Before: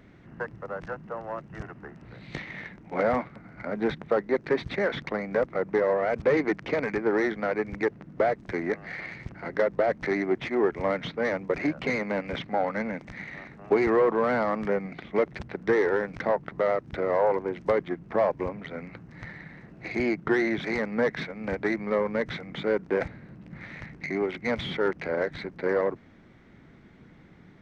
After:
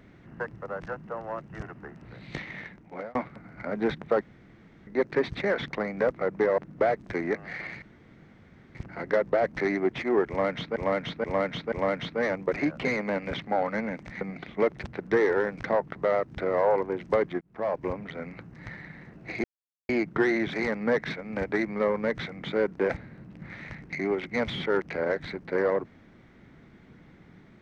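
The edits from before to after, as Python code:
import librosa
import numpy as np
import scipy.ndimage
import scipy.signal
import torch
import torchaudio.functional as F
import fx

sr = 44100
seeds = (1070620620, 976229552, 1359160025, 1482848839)

y = fx.edit(x, sr, fx.fade_out_span(start_s=2.37, length_s=0.78, curve='qsin'),
    fx.insert_room_tone(at_s=4.21, length_s=0.66),
    fx.cut(start_s=5.92, length_s=2.05),
    fx.insert_room_tone(at_s=9.21, length_s=0.93),
    fx.repeat(start_s=10.74, length_s=0.48, count=4),
    fx.cut(start_s=13.23, length_s=1.54),
    fx.fade_in_span(start_s=17.97, length_s=0.48),
    fx.insert_silence(at_s=20.0, length_s=0.45), tone=tone)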